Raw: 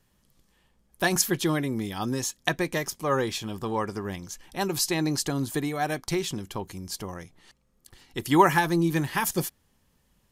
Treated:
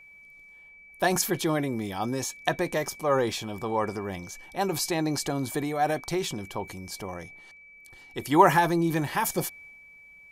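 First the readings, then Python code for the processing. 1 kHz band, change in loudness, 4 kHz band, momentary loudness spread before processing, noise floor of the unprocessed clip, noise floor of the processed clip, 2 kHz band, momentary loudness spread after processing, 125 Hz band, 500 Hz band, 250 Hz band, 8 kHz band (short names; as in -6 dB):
+2.0 dB, 0.0 dB, -2.5 dB, 13 LU, -68 dBFS, -52 dBFS, -1.5 dB, 14 LU, -2.0 dB, +1.5 dB, -1.5 dB, -2.5 dB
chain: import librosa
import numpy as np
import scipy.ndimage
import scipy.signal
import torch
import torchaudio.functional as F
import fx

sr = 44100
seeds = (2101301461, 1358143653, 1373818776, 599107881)

y = x + 10.0 ** (-46.0 / 20.0) * np.sin(2.0 * np.pi * 2300.0 * np.arange(len(x)) / sr)
y = fx.peak_eq(y, sr, hz=670.0, db=8.0, octaves=1.4)
y = fx.transient(y, sr, attack_db=-1, sustain_db=4)
y = y * 10.0 ** (-3.5 / 20.0)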